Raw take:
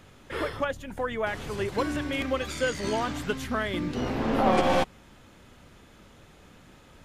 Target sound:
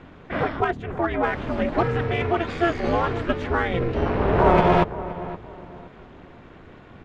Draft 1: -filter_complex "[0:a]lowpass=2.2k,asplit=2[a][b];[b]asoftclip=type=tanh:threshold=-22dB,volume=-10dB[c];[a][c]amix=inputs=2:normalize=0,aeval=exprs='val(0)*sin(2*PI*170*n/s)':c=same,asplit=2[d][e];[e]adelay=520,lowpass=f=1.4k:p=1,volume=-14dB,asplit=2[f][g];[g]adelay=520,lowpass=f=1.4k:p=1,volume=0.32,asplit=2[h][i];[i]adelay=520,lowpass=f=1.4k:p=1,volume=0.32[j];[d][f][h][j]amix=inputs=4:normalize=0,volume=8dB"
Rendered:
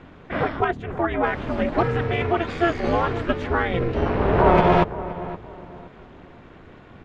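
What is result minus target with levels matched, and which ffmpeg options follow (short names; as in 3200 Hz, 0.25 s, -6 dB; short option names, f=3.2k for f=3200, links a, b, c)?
soft clip: distortion -6 dB
-filter_complex "[0:a]lowpass=2.2k,asplit=2[a][b];[b]asoftclip=type=tanh:threshold=-31dB,volume=-10dB[c];[a][c]amix=inputs=2:normalize=0,aeval=exprs='val(0)*sin(2*PI*170*n/s)':c=same,asplit=2[d][e];[e]adelay=520,lowpass=f=1.4k:p=1,volume=-14dB,asplit=2[f][g];[g]adelay=520,lowpass=f=1.4k:p=1,volume=0.32,asplit=2[h][i];[i]adelay=520,lowpass=f=1.4k:p=1,volume=0.32[j];[d][f][h][j]amix=inputs=4:normalize=0,volume=8dB"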